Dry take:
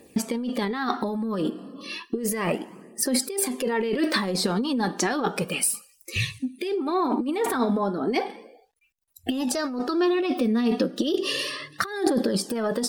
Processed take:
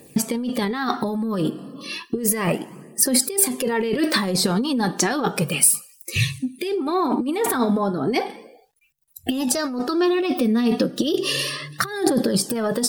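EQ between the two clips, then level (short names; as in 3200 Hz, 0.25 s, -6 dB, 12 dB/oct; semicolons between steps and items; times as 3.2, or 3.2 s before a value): bell 140 Hz +15 dB 0.32 oct; high shelf 7700 Hz +9.5 dB; +2.5 dB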